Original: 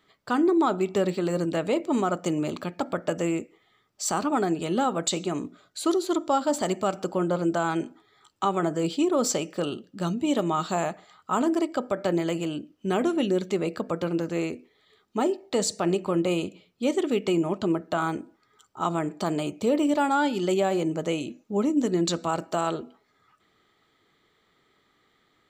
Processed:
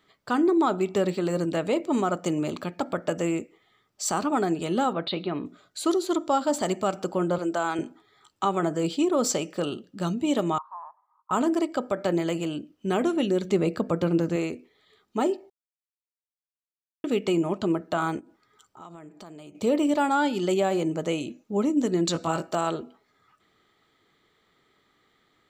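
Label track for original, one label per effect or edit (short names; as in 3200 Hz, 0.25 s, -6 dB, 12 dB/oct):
4.930000	5.460000	elliptic low-pass 4200 Hz
7.380000	7.790000	Bessel high-pass 330 Hz
10.580000	11.310000	Butterworth band-pass 1000 Hz, Q 5.6
13.440000	14.360000	low shelf 340 Hz +7 dB
15.500000	17.040000	mute
18.190000	19.550000	compressor 3:1, threshold -47 dBFS
22.130000	22.550000	doubler 19 ms -4.5 dB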